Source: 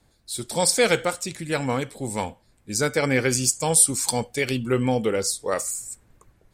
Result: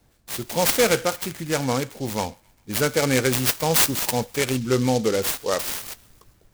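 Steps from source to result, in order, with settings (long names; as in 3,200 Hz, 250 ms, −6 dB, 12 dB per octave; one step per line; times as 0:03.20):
hard clipping −12.5 dBFS, distortion −18 dB
on a send: delay with a high-pass on its return 133 ms, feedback 59%, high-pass 1,600 Hz, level −24 dB
on the sum: short delay modulated by noise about 4,800 Hz, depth 0.062 ms
level +1.5 dB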